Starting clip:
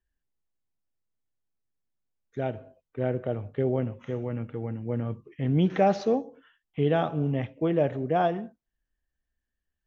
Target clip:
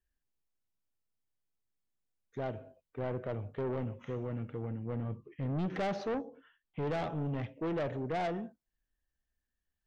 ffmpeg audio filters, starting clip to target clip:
-filter_complex "[0:a]asettb=1/sr,asplit=3[s0][s1][s2];[s0]atrim=end=4.674[s3];[s1]atrim=start=4.67:end=6.93,asetpts=PTS-STARTPTS,afade=t=in:d=0.004:c=qsin,afade=t=out:st=2.256:d=0.004:c=qsin,lowpass=f=3200:p=1[s4];[s2]atrim=start=6.926[s5];[s3][s4]acrossfade=d=0.004:c1=hsin:c2=qsin[s6];[s6][s5]acrossfade=d=0.004:c1=qsin:c2=hsin,asoftclip=type=tanh:threshold=0.0422,volume=0.708"

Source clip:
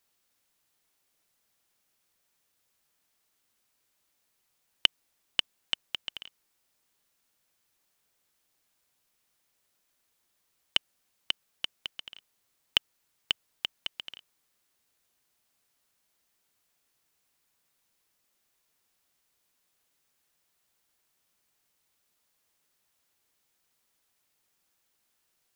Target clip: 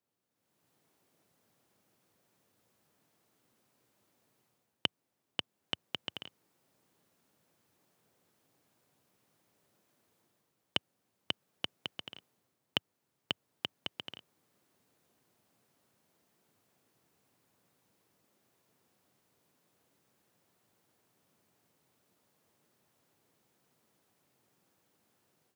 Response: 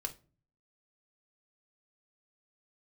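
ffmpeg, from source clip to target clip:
-af "highpass=f=100:w=0.5412,highpass=f=100:w=1.3066,tiltshelf=f=970:g=8.5,dynaudnorm=f=340:g=3:m=5.31,volume=0.398"

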